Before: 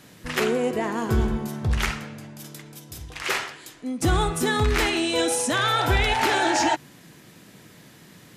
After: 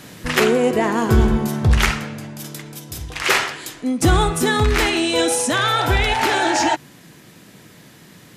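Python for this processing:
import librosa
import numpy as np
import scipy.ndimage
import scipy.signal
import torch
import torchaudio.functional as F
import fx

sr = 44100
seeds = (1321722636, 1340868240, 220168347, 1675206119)

y = fx.rider(x, sr, range_db=5, speed_s=0.5)
y = y * 10.0 ** (6.0 / 20.0)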